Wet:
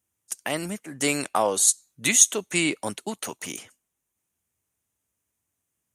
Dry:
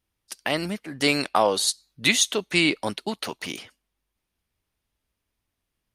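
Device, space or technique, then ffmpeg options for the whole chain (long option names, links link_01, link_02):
budget condenser microphone: -af "highpass=frequency=72:width=0.5412,highpass=frequency=72:width=1.3066,highshelf=frequency=5700:width_type=q:width=3:gain=7,volume=-2.5dB"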